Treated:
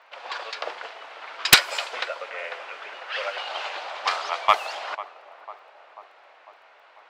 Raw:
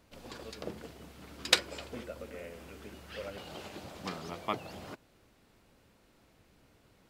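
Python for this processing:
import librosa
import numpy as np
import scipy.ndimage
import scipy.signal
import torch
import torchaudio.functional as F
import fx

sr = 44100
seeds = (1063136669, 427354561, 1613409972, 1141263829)

y = scipy.signal.sosfilt(scipy.signal.butter(4, 730.0, 'highpass', fs=sr, output='sos'), x)
y = fx.high_shelf(y, sr, hz=8900.0, db=-10.0)
y = fx.echo_tape(y, sr, ms=496, feedback_pct=75, wet_db=-14.0, lp_hz=1100.0, drive_db=5.0, wow_cents=39)
y = fx.env_lowpass(y, sr, base_hz=2400.0, full_db=-35.0)
y = fx.fold_sine(y, sr, drive_db=11, ceiling_db=-6.5)
y = fx.dmg_crackle(y, sr, seeds[0], per_s=14.0, level_db=-59.0)
y = y * librosa.db_to_amplitude(3.5)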